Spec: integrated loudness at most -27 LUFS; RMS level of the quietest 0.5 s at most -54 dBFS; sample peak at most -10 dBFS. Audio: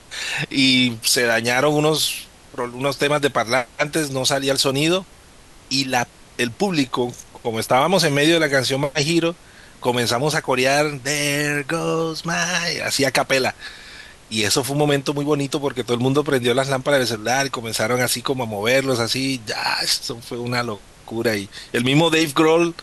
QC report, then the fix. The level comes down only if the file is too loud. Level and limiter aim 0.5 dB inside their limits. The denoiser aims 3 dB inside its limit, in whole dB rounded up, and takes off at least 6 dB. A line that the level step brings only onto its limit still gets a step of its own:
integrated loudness -19.5 LUFS: fail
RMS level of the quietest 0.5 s -46 dBFS: fail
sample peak -5.5 dBFS: fail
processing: noise reduction 6 dB, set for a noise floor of -46 dBFS; trim -8 dB

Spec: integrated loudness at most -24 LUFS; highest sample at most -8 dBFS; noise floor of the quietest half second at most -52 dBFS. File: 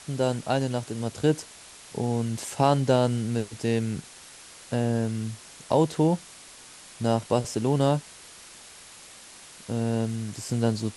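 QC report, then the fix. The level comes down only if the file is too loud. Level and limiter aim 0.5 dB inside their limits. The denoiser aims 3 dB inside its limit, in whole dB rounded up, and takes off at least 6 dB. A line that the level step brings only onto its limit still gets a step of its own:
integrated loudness -27.0 LUFS: pass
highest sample -7.0 dBFS: fail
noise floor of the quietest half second -48 dBFS: fail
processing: noise reduction 7 dB, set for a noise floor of -48 dBFS; peak limiter -8.5 dBFS

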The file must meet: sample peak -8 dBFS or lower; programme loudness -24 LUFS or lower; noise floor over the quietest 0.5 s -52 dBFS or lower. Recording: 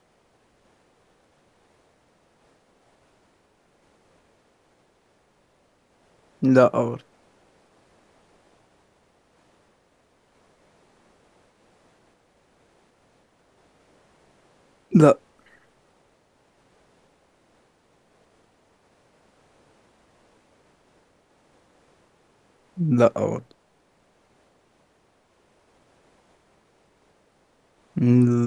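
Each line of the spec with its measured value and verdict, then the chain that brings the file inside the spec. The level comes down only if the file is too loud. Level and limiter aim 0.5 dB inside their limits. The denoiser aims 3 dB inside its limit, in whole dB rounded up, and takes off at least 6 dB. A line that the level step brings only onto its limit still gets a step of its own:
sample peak -2.5 dBFS: fail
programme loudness -20.5 LUFS: fail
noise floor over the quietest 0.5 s -64 dBFS: pass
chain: trim -4 dB; peak limiter -8.5 dBFS

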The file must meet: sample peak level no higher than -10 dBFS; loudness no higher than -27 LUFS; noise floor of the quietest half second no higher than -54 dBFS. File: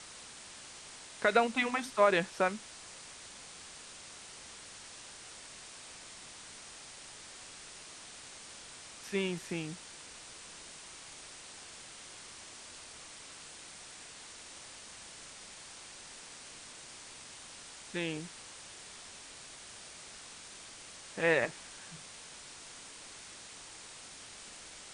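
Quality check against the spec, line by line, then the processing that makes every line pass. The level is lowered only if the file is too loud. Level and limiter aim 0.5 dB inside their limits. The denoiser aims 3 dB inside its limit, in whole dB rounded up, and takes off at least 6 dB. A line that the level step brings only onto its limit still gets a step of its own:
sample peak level -13.0 dBFS: pass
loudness -39.5 LUFS: pass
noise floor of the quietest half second -50 dBFS: fail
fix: noise reduction 7 dB, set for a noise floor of -50 dBFS

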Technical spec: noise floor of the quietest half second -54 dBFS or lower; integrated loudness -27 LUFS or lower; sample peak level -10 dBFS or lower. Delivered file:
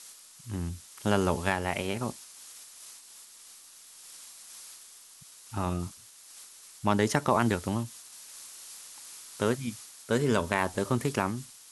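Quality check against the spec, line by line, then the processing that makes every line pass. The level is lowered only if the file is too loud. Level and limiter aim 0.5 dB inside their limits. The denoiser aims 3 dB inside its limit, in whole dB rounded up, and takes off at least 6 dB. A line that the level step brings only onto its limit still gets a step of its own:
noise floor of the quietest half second -52 dBFS: fail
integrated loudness -30.0 LUFS: pass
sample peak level -8.5 dBFS: fail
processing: noise reduction 6 dB, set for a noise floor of -52 dBFS; peak limiter -10.5 dBFS

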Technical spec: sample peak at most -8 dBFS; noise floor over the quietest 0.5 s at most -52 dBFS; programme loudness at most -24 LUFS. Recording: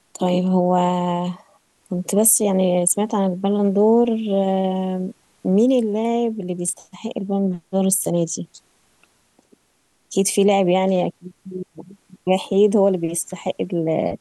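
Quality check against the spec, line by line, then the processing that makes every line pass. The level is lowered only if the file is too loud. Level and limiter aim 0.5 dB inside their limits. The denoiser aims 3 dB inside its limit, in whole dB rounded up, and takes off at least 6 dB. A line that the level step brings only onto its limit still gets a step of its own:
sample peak -3.0 dBFS: fail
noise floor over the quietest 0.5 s -64 dBFS: pass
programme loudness -20.0 LUFS: fail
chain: trim -4.5 dB; peak limiter -8.5 dBFS

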